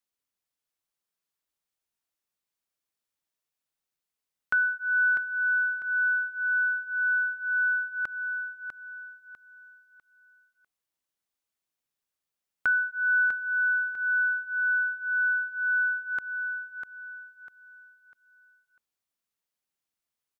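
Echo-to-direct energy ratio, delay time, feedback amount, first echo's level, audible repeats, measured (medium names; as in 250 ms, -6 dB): -7.0 dB, 648 ms, 32%, -7.5 dB, 3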